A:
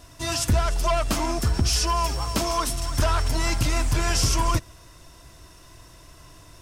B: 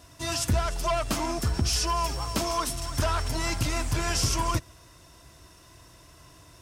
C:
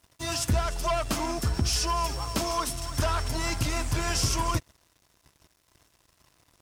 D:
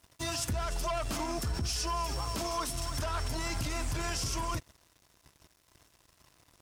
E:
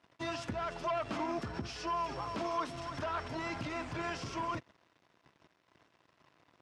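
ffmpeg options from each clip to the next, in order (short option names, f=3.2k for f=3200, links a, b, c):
-af "highpass=51,volume=-3dB"
-af "aeval=exprs='sgn(val(0))*max(abs(val(0))-0.00335,0)':c=same"
-af "alimiter=level_in=1dB:limit=-24dB:level=0:latency=1:release=44,volume=-1dB"
-af "highpass=160,lowpass=2.7k"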